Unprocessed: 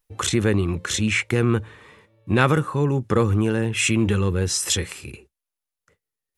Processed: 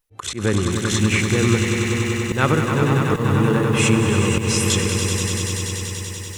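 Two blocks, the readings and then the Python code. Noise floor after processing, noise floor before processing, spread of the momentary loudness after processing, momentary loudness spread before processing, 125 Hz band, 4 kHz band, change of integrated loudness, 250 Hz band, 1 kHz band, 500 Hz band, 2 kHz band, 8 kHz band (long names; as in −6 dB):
−32 dBFS, below −85 dBFS, 7 LU, 5 LU, +4.0 dB, +3.5 dB, +2.0 dB, +3.5 dB, +3.5 dB, +2.5 dB, +3.0 dB, +4.0 dB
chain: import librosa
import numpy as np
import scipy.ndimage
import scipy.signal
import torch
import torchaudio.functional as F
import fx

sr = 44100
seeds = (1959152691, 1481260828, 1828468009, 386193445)

y = fx.echo_swell(x, sr, ms=96, loudest=5, wet_db=-8.5)
y = fx.auto_swell(y, sr, attack_ms=112.0)
y = fx.echo_crushed(y, sr, ms=479, feedback_pct=55, bits=6, wet_db=-11)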